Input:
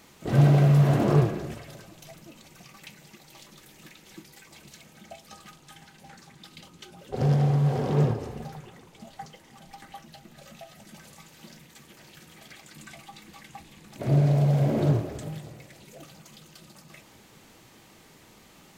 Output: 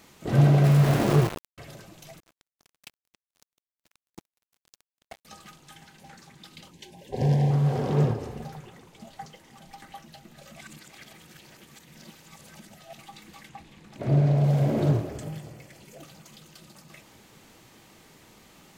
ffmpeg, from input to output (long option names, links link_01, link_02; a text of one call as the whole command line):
ffmpeg -i in.wav -filter_complex "[0:a]asettb=1/sr,asplit=3[link_01][link_02][link_03];[link_01]atrim=end=0.644[link_04];[link_02]atrim=start=0.64:end=1.58,asetpts=PTS-STARTPTS,afade=type=in:duration=0.004:curve=qsin,afade=type=out:start_time=0.936:duration=0.004:curve=qsin,aeval=exprs='val(0)*gte(abs(val(0)),0.0531)':channel_layout=same[link_05];[link_03]atrim=start=1.576[link_06];[link_04][link_05]acrossfade=duration=0.004:curve1=hsin:curve2=qsin[link_07];[link_07][link_06]acrossfade=duration=0.004:curve1=qsin:curve2=hsin,asettb=1/sr,asplit=3[link_08][link_09][link_10];[link_08]atrim=end=2.204[link_11];[link_09]atrim=start=2.2:end=5.25,asetpts=PTS-STARTPTS,afade=type=in:duration=0.004:curve=qsin,afade=type=out:start_time=3.046:duration=0.004:curve=qsin,acrusher=bits=5:mix=0:aa=0.5[link_12];[link_10]atrim=start=5.246[link_13];[link_11][link_12]acrossfade=duration=0.004:curve1=hsin:curve2=qsin[link_14];[link_14][link_13]acrossfade=duration=0.004:curve1=qsin:curve2=hsin,asettb=1/sr,asplit=3[link_15][link_16][link_17];[link_15]atrim=end=6.714[link_18];[link_16]atrim=start=6.71:end=7.51,asetpts=PTS-STARTPTS,afade=type=in:duration=0.004:curve=qsin,afade=type=out:start_time=0.796:duration=0.004:curve=qsin,asuperstop=centerf=1300:order=12:qfactor=2.5[link_19];[link_17]atrim=start=7.506[link_20];[link_18][link_19]acrossfade=duration=0.004:curve1=hsin:curve2=qsin[link_21];[link_21][link_20]acrossfade=duration=0.004:curve1=qsin:curve2=hsin,asettb=1/sr,asplit=3[link_22][link_23][link_24];[link_22]atrim=end=13.494[link_25];[link_23]atrim=start=13.49:end=14.44,asetpts=PTS-STARTPTS,afade=type=in:duration=0.004:curve=qsin,afade=type=out:start_time=0.946:duration=0.004:curve=qsin,lowpass=frequency=3900:poles=1[link_26];[link_24]atrim=start=14.436[link_27];[link_25][link_26]acrossfade=duration=0.004:curve1=hsin:curve2=qsin[link_28];[link_28][link_27]acrossfade=duration=0.004:curve1=qsin:curve2=hsin,asettb=1/sr,asplit=3[link_29][link_30][link_31];[link_29]atrim=end=15.094[link_32];[link_30]atrim=start=15.09:end=15.99,asetpts=PTS-STARTPTS,afade=type=in:duration=0.004:curve=qsin,afade=type=out:start_time=0.896:duration=0.004:curve=qsin,bandreject=frequency=3800:width=10[link_33];[link_31]atrim=start=15.986[link_34];[link_32][link_33]acrossfade=duration=0.004:curve1=hsin:curve2=qsin[link_35];[link_35][link_34]acrossfade=duration=0.004:curve1=qsin:curve2=hsin,asplit=3[link_36][link_37][link_38];[link_36]atrim=end=10.562[link_39];[link_37]atrim=start=10.558:end=12.982,asetpts=PTS-STARTPTS,areverse[link_40];[link_38]atrim=start=12.978[link_41];[link_39][link_40]acrossfade=duration=0.004:curve1=hsin:curve2=hsin[link_42];[link_42][link_41]acrossfade=duration=0.004:curve1=hsin:curve2=hsin" out.wav